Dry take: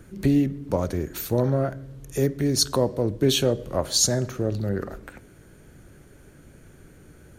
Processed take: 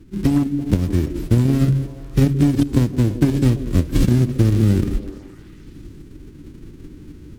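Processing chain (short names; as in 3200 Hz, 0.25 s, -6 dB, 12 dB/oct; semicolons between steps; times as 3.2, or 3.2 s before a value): spectral whitening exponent 0.1; resonant low shelf 450 Hz +13.5 dB, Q 3; gate -32 dBFS, range -6 dB; RIAA curve playback; de-hum 68.23 Hz, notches 2; added harmonics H 7 -25 dB, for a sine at 8 dBFS; compressor 12:1, threshold -14 dBFS, peak gain reduction 16.5 dB; on a send: delay with a stepping band-pass 0.167 s, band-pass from 320 Hz, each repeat 0.7 oct, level -9 dB; on the sum: AGC gain up to 8 dB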